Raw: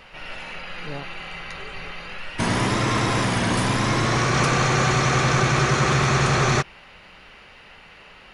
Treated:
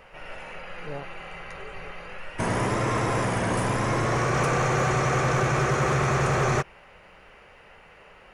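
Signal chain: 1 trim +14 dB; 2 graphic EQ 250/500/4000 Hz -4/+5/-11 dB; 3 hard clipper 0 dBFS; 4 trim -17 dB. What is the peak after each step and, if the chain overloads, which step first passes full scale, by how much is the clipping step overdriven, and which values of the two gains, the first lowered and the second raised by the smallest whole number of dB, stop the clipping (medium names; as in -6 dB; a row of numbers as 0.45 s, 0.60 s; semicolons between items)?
+7.0 dBFS, +6.5 dBFS, 0.0 dBFS, -17.0 dBFS; step 1, 6.5 dB; step 1 +7 dB, step 4 -10 dB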